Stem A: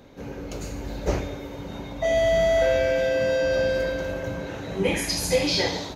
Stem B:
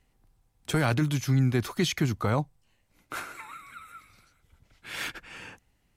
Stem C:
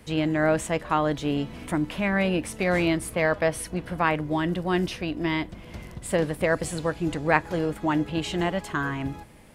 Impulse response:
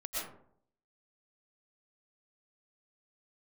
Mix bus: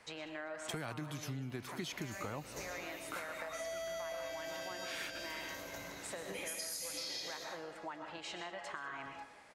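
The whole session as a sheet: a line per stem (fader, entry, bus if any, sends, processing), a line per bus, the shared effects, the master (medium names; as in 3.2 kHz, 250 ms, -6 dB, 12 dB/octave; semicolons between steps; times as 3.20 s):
-0.5 dB, 1.50 s, bus A, send -8.5 dB, echo send -20.5 dB, pre-emphasis filter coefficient 0.9
-4.5 dB, 0.00 s, no bus, no send, echo send -18 dB, none
-3.5 dB, 0.00 s, bus A, send -9 dB, echo send -16.5 dB, compression 5:1, threshold -31 dBFS, peak gain reduction 15.5 dB; three-band isolator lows -17 dB, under 590 Hz, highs -22 dB, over 7.6 kHz
bus A: 0.0 dB, peaking EQ 3.1 kHz -8.5 dB 0.51 oct; compression, threshold -40 dBFS, peak gain reduction 12 dB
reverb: on, RT60 0.65 s, pre-delay 80 ms
echo: feedback delay 196 ms, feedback 38%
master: bass shelf 120 Hz -11 dB; compression 6:1, threshold -39 dBFS, peak gain reduction 12 dB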